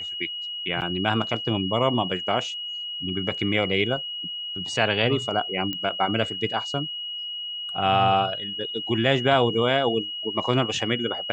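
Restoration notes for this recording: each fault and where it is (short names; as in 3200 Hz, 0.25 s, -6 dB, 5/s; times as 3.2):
tone 2900 Hz -30 dBFS
0.81–0.82 gap 8.4 ms
5.73 pop -16 dBFS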